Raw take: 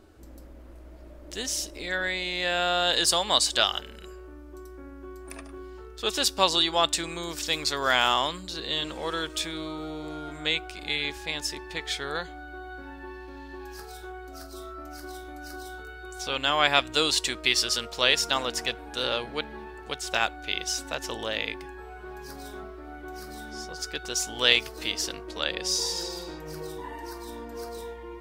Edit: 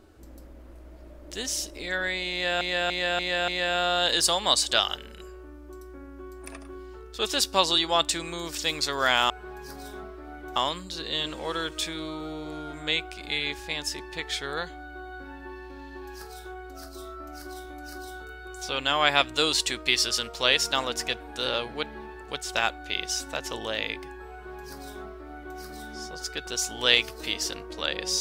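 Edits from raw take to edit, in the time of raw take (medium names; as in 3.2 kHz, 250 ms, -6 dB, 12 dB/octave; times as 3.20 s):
2.32–2.61 s: loop, 5 plays
21.90–23.16 s: copy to 8.14 s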